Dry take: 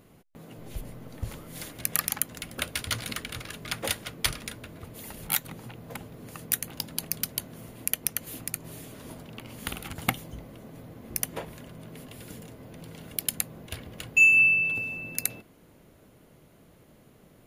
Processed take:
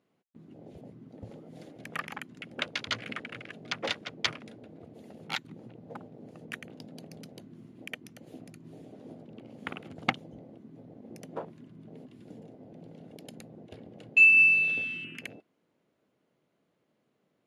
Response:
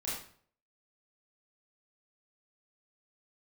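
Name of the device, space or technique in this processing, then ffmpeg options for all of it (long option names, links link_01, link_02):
over-cleaned archive recording: -af "highpass=190,lowpass=5700,afwtdn=0.0112"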